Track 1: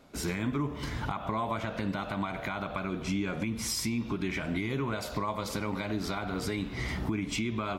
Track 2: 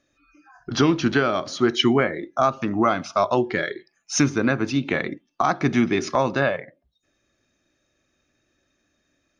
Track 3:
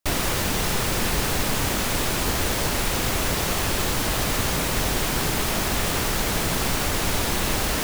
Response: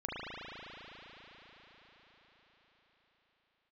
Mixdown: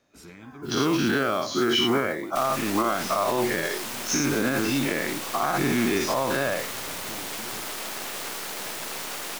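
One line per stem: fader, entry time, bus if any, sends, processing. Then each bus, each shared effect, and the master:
−12.5 dB, 0.00 s, no send, no processing
−6.0 dB, 0.00 s, no send, every bin's largest magnitude spread in time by 120 ms; noise that follows the level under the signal 22 dB
−3.0 dB, 2.30 s, no send, Bessel high-pass filter 380 Hz, order 2; half-wave rectification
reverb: not used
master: low-shelf EQ 72 Hz −10.5 dB; brickwall limiter −13.5 dBFS, peak gain reduction 7 dB

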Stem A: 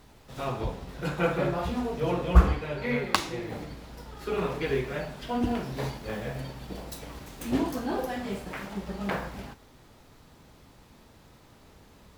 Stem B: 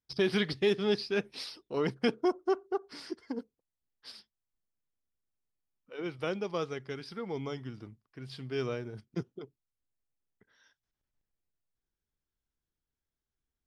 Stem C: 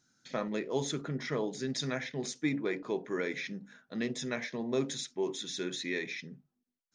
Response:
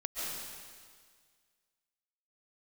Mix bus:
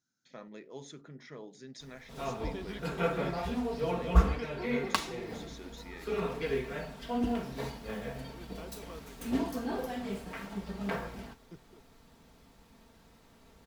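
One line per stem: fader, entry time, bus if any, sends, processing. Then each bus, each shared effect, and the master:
−5.5 dB, 1.80 s, no send, comb filter 4.4 ms, depth 46%
−15.5 dB, 2.35 s, no send, no processing
−13.5 dB, 0.00 s, no send, no processing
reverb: not used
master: no processing

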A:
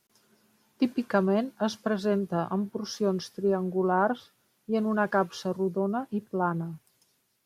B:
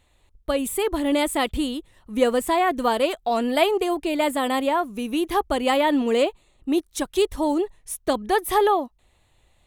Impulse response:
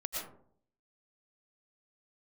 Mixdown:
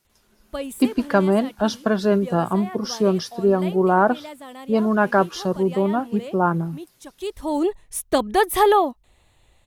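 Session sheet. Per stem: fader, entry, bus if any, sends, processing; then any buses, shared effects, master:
+1.0 dB, 0.00 s, no send, no processing
−3.5 dB, 0.05 s, no send, automatic ducking −19 dB, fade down 1.40 s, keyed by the first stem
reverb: not used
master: automatic gain control gain up to 7 dB

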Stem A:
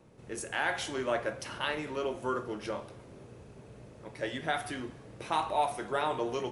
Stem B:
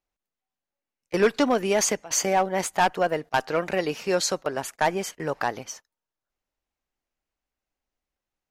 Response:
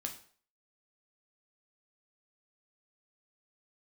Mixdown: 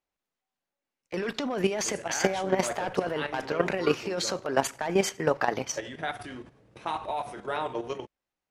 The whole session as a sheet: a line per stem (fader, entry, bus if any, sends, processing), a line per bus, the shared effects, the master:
+2.5 dB, 1.55 s, no send, noise gate −44 dBFS, range −9 dB; pitch vibrato 2.7 Hz 20 cents
+3.0 dB, 0.00 s, send −9 dB, low-shelf EQ 62 Hz −10 dB; hum removal 59.36 Hz, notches 2; compressor whose output falls as the input rises −27 dBFS, ratio −1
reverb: on, RT60 0.50 s, pre-delay 5 ms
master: high-shelf EQ 8,700 Hz −11.5 dB; output level in coarse steps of 10 dB

